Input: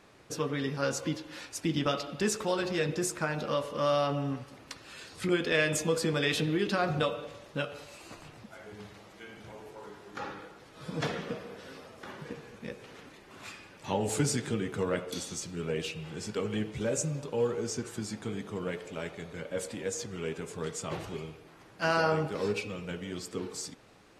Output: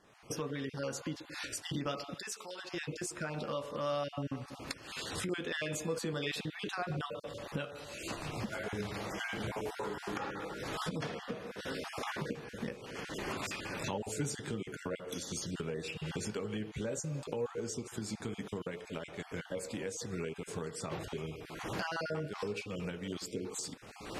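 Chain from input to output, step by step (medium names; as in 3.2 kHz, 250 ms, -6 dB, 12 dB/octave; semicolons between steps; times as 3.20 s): random holes in the spectrogram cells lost 20%; recorder AGC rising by 37 dB/s; 2.14–2.72 s: high-pass 1.4 kHz 6 dB/octave; trim -7.5 dB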